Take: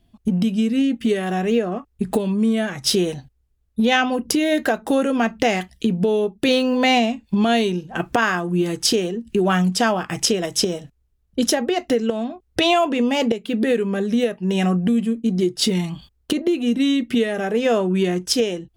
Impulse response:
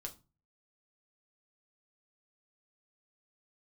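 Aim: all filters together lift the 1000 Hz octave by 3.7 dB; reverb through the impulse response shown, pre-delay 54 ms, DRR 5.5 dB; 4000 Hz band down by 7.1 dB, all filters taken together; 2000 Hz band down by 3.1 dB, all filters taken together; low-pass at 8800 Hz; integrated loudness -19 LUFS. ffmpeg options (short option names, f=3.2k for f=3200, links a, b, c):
-filter_complex "[0:a]lowpass=8.8k,equalizer=f=1k:t=o:g=7,equalizer=f=2k:t=o:g=-4.5,equalizer=f=4k:t=o:g=-9,asplit=2[a][b];[1:a]atrim=start_sample=2205,adelay=54[c];[b][c]afir=irnorm=-1:irlink=0,volume=-2dB[d];[a][d]amix=inputs=2:normalize=0"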